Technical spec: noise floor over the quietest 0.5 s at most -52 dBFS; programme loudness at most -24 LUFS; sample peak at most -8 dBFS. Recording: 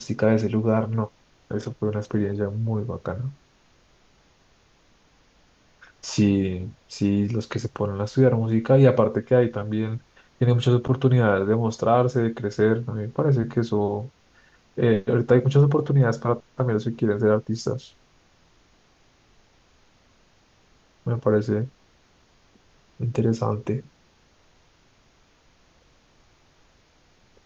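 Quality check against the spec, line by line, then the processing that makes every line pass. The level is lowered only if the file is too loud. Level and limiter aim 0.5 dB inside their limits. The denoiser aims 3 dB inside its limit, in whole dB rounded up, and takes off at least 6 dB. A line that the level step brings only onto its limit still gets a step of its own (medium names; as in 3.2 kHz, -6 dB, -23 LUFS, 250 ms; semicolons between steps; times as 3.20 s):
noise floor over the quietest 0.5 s -60 dBFS: pass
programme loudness -23.0 LUFS: fail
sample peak -4.5 dBFS: fail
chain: trim -1.5 dB; peak limiter -8.5 dBFS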